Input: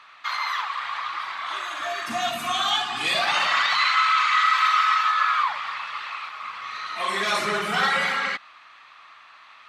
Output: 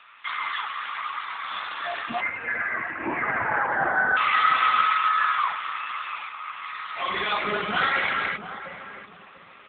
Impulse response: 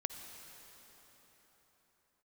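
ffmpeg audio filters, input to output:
-filter_complex "[0:a]aemphasis=mode=production:type=50fm,asettb=1/sr,asplit=3[a][b][c];[a]atrim=end=2.204[d];[b]atrim=start=2.2:end=4.17,asetpts=PTS-STARTPTS,afade=t=in:d=0.004:c=qsin,afade=t=out:st=1.966:d=0.004:c=qsin,lowpass=f=2.4k:t=q:w=0.5098,lowpass=f=2.4k:t=q:w=0.6013,lowpass=f=2.4k:t=q:w=0.9,lowpass=f=2.4k:t=q:w=2.563,afreqshift=-2800[e];[c]atrim=start=4.166[f];[d][e]acrossfade=d=0.004:c1=hsin:c2=qsin[g];[g][f]acrossfade=d=0.004:c1=qsin:c2=hsin,equalizer=f=120:w=1.6:g=2.5,asplit=2[h][i];[i]adelay=694,lowpass=f=820:p=1,volume=-8dB,asplit=2[j][k];[k]adelay=694,lowpass=f=820:p=1,volume=0.33,asplit=2[l][m];[m]adelay=694,lowpass=f=820:p=1,volume=0.33,asplit=2[n][o];[o]adelay=694,lowpass=f=820:p=1,volume=0.33[p];[h][j][l][n][p]amix=inputs=5:normalize=0" -ar 8000 -c:a libopencore_amrnb -b:a 7950

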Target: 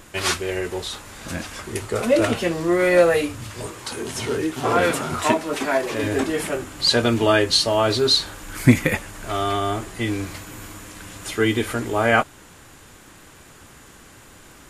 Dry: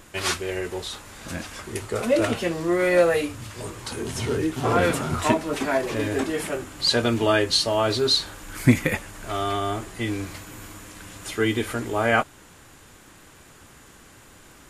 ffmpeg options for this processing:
-filter_complex "[0:a]asettb=1/sr,asplit=3[a][b][c];[a]atrim=end=3.664[d];[b]atrim=start=3.66:end=6.03,asetpts=PTS-STARTPTS,afade=t=in:d=0.004:c=qsin,afade=t=out:st=2.366:d=0.004:c=qsin,lowshelf=f=170:g=-10.5[e];[c]atrim=start=6.026[f];[d][e]acrossfade=d=0.004:c1=hsin:c2=qsin[g];[g][f]acrossfade=d=0.004:c1=qsin:c2=hsin,volume=3dB"

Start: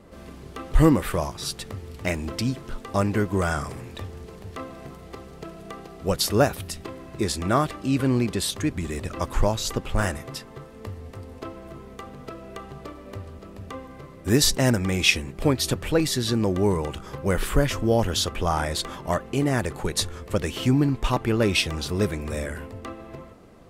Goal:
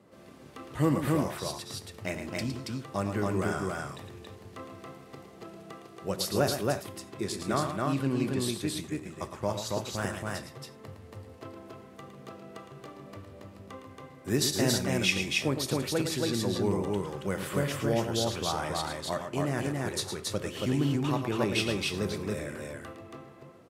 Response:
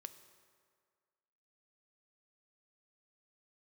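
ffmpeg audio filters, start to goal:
-filter_complex "[0:a]highpass=f=100:w=0.5412,highpass=f=100:w=1.3066,asplit=3[a][b][c];[a]afade=t=out:st=7.42:d=0.02[d];[b]agate=range=-33dB:threshold=-26dB:ratio=3:detection=peak,afade=t=in:st=7.42:d=0.02,afade=t=out:st=9.84:d=0.02[e];[c]afade=t=in:st=9.84:d=0.02[f];[d][e][f]amix=inputs=3:normalize=0,aecho=1:1:110.8|277:0.398|0.794[g];[1:a]atrim=start_sample=2205,afade=t=out:st=0.15:d=0.01,atrim=end_sample=7056[h];[g][h]afir=irnorm=-1:irlink=0,volume=-2.5dB"

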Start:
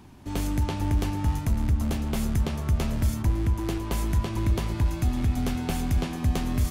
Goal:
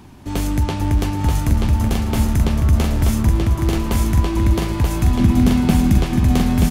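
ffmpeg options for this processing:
-filter_complex "[0:a]asettb=1/sr,asplit=3[a][b][c];[a]atrim=end=5.194[d];[b]atrim=start=5.19:end=6,asetpts=PTS-STARTPTS,afade=t=in:d=0.004:c=qsin,afade=t=out:st=0.806:d=0.004:c=qsin,equalizer=f=200:w=2:g=13[e];[c]atrim=start=5.996[f];[d][e]acrossfade=d=0.004:c1=hsin:c2=qsin[g];[g][f]acrossfade=d=0.004:c1=qsin:c2=hsin,aecho=1:1:932:0.708,volume=7dB"

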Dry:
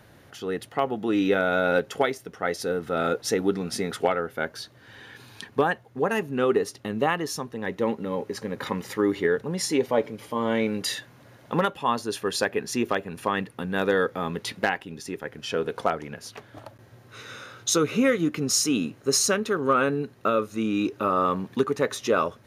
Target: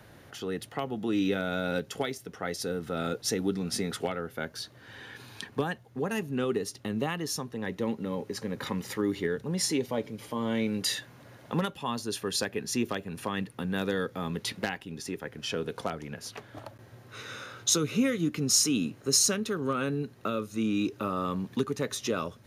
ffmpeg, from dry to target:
-filter_complex "[0:a]acrossover=split=260|3000[a][b][c];[b]acompressor=threshold=-39dB:ratio=2[d];[a][d][c]amix=inputs=3:normalize=0"

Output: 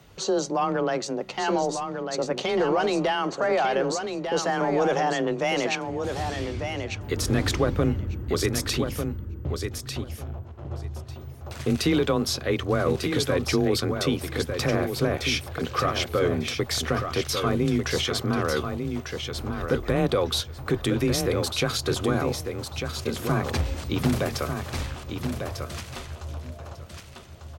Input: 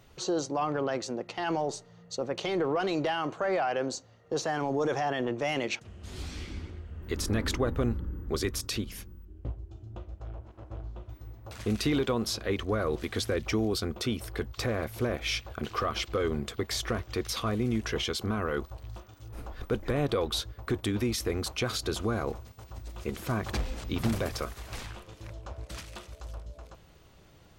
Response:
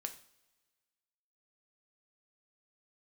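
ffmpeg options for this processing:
-af "afreqshift=22,aecho=1:1:1197|2394|3591:0.473|0.0757|0.0121,volume=5dB"

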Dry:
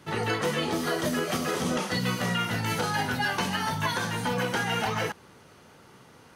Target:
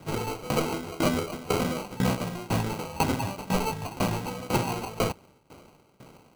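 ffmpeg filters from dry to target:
-af "acrusher=samples=25:mix=1:aa=0.000001,aeval=exprs='val(0)*pow(10,-20*if(lt(mod(2*n/s,1),2*abs(2)/1000),1-mod(2*n/s,1)/(2*abs(2)/1000),(mod(2*n/s,1)-2*abs(2)/1000)/(1-2*abs(2)/1000))/20)':c=same,volume=6.5dB"

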